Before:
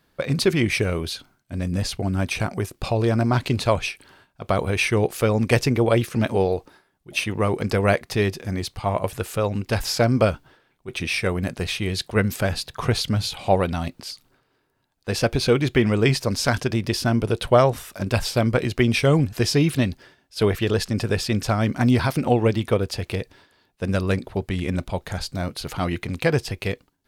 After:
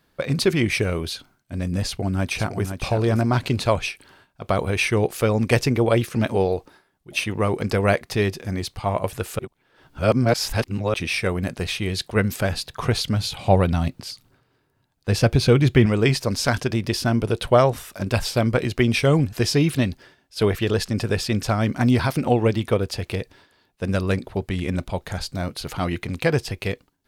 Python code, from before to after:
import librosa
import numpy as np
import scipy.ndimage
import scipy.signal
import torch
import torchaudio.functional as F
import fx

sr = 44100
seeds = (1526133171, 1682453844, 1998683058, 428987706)

y = fx.echo_throw(x, sr, start_s=1.87, length_s=0.83, ms=510, feedback_pct=15, wet_db=-8.0)
y = fx.peak_eq(y, sr, hz=110.0, db=8.0, octaves=1.7, at=(13.3, 15.86))
y = fx.edit(y, sr, fx.reverse_span(start_s=9.39, length_s=1.55), tone=tone)